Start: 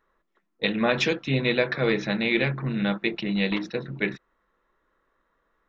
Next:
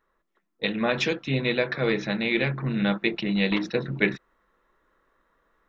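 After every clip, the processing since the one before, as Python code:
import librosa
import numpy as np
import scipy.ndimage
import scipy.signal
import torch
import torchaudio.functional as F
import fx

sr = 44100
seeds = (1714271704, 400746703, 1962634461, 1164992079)

y = fx.rider(x, sr, range_db=10, speed_s=0.5)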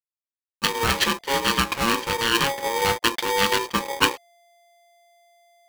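y = fx.backlash(x, sr, play_db=-39.0)
y = fx.dynamic_eq(y, sr, hz=3100.0, q=0.85, threshold_db=-39.0, ratio=4.0, max_db=5)
y = y * np.sign(np.sin(2.0 * np.pi * 690.0 * np.arange(len(y)) / sr))
y = y * 10.0 ** (1.5 / 20.0)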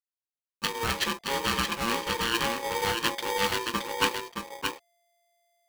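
y = x + 10.0 ** (-5.0 / 20.0) * np.pad(x, (int(621 * sr / 1000.0), 0))[:len(x)]
y = y * 10.0 ** (-7.0 / 20.0)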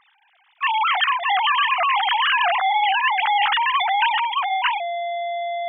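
y = fx.sine_speech(x, sr)
y = fx.env_flatten(y, sr, amount_pct=70)
y = y * 10.0 ** (4.5 / 20.0)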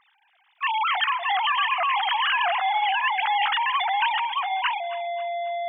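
y = fx.echo_feedback(x, sr, ms=271, feedback_pct=39, wet_db=-16.5)
y = y * 10.0 ** (-4.0 / 20.0)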